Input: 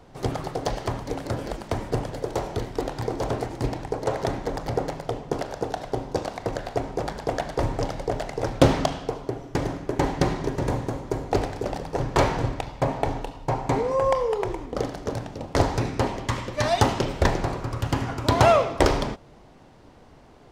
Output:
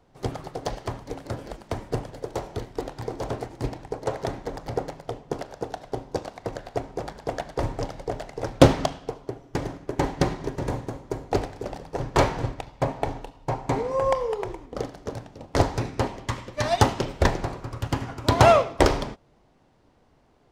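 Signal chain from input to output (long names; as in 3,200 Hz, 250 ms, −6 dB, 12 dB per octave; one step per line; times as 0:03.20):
expander for the loud parts 1.5 to 1, over −39 dBFS
level +3.5 dB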